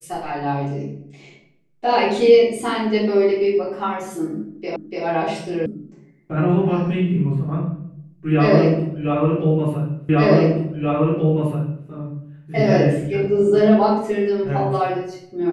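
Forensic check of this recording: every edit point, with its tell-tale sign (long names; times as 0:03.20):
0:04.76: the same again, the last 0.29 s
0:05.66: cut off before it has died away
0:10.09: the same again, the last 1.78 s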